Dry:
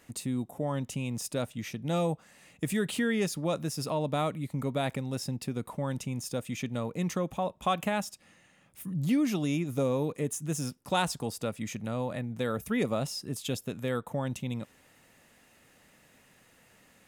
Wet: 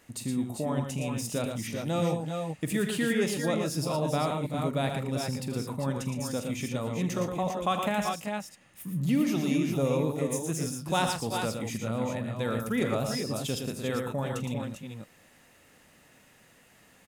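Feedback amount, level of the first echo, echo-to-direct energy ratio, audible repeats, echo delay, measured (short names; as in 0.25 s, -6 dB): no steady repeat, -13.5 dB, -2.0 dB, 5, 44 ms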